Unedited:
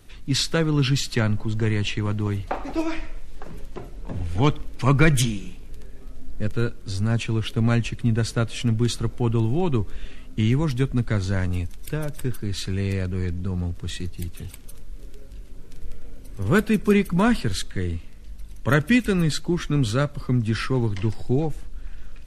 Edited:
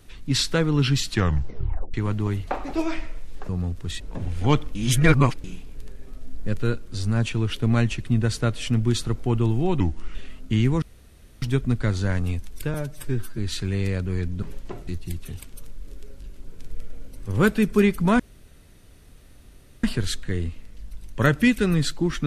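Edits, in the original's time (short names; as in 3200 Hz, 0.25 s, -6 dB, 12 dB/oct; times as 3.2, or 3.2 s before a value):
1.1 tape stop 0.84 s
3.49–3.94 swap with 13.48–13.99
4.69–5.38 reverse
9.74–10.02 speed 80%
10.69 insert room tone 0.60 s
12.01–12.44 stretch 1.5×
17.31 insert room tone 1.64 s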